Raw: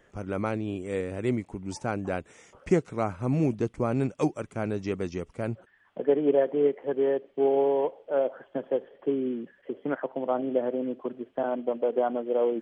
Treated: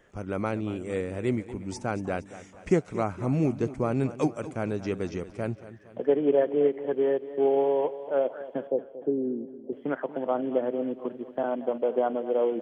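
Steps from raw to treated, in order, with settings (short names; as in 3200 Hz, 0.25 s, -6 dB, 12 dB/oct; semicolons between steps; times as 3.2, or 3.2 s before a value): 8.67–9.73 steep low-pass 830 Hz 48 dB/oct; warbling echo 0.231 s, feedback 49%, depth 51 cents, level -15 dB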